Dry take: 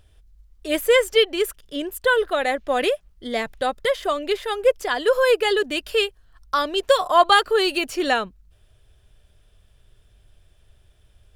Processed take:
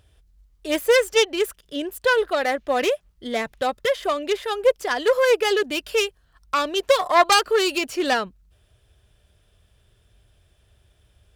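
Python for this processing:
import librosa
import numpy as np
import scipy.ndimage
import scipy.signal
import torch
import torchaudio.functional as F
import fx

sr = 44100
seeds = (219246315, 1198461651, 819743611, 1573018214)

y = fx.self_delay(x, sr, depth_ms=0.17)
y = scipy.signal.sosfilt(scipy.signal.butter(2, 48.0, 'highpass', fs=sr, output='sos'), y)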